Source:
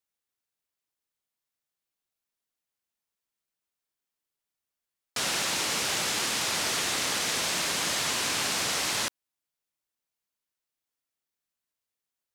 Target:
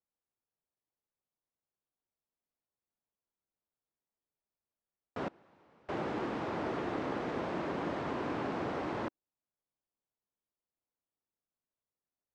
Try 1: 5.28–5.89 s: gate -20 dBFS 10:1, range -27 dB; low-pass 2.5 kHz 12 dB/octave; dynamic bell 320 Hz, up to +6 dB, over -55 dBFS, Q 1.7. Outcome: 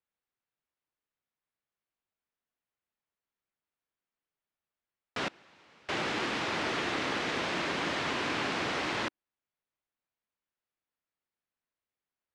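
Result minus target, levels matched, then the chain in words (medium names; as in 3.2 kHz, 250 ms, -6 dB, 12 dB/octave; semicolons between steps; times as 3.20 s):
2 kHz band +6.5 dB
5.28–5.89 s: gate -20 dBFS 10:1, range -27 dB; low-pass 910 Hz 12 dB/octave; dynamic bell 320 Hz, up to +6 dB, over -55 dBFS, Q 1.7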